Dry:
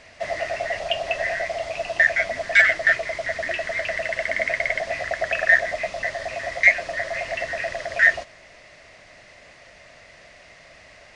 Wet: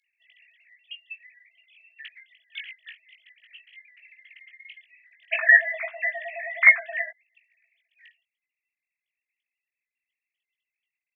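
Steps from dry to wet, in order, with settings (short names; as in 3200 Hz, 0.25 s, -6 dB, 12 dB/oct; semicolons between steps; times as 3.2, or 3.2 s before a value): sine-wave speech; inverse Chebyshev high-pass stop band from 890 Hz, stop band 70 dB, from 5.31 s stop band from 220 Hz, from 7.09 s stop band from 1200 Hz; doubler 19 ms -5.5 dB; gain +2.5 dB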